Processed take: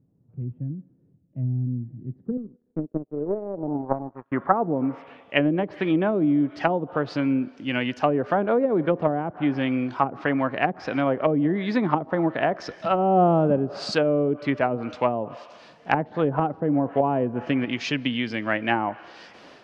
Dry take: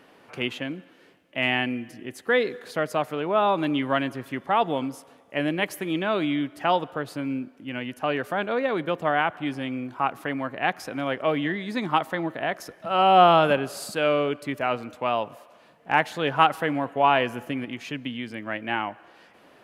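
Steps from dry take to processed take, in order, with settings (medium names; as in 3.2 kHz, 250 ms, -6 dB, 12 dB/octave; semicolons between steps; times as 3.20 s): low-pass that closes with the level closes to 400 Hz, closed at -20.5 dBFS; 2.37–4.32 s: power-law waveshaper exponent 2; low-pass sweep 130 Hz -> 5.4 kHz, 1.97–5.97 s; level rider gain up to 6.5 dB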